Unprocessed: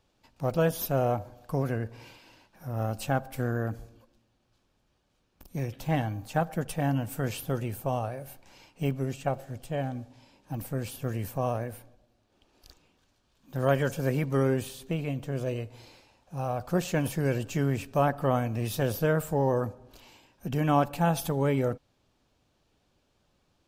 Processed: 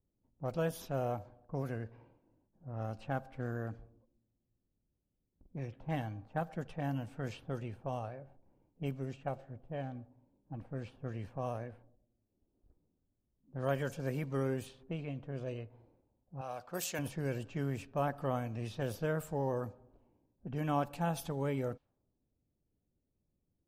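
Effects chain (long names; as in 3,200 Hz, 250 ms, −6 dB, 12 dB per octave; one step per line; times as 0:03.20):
low-pass that shuts in the quiet parts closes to 330 Hz, open at −23.5 dBFS
0:16.41–0:16.99: RIAA equalisation recording
level −9 dB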